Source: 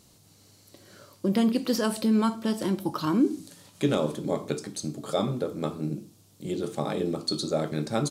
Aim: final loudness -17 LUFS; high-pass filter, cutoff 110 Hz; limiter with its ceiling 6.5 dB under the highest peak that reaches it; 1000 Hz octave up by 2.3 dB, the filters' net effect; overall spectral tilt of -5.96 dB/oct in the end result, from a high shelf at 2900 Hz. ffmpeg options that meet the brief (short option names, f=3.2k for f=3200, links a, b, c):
-af "highpass=110,equalizer=f=1k:t=o:g=3.5,highshelf=f=2.9k:g=-4,volume=13.5dB,alimiter=limit=-5dB:level=0:latency=1"